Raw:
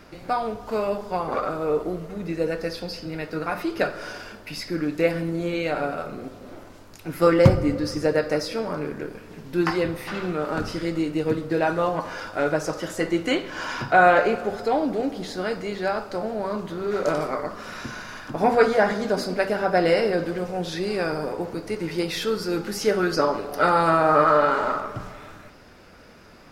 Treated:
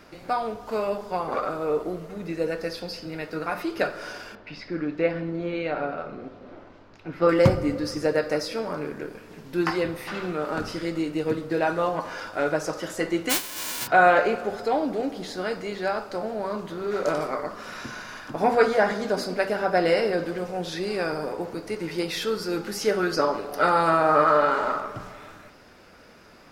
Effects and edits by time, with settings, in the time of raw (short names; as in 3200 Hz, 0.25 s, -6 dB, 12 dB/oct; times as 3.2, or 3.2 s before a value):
4.35–7.29 air absorption 220 m
13.29–13.86 spectral whitening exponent 0.1
whole clip: low shelf 170 Hz -6 dB; gain -1 dB